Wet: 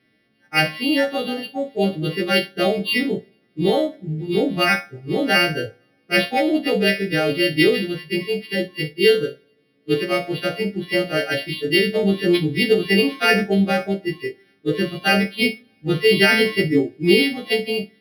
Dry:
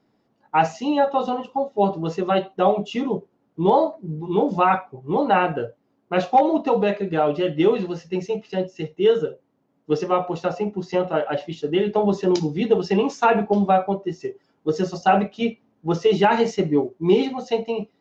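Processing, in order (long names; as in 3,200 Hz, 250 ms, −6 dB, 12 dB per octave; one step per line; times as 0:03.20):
every partial snapped to a pitch grid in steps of 2 semitones
flat-topped bell 2,800 Hz +10 dB
phaser with its sweep stopped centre 2,300 Hz, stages 4
coupled-rooms reverb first 0.33 s, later 2 s, from −27 dB, DRR 14 dB
linearly interpolated sample-rate reduction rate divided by 6×
level +4 dB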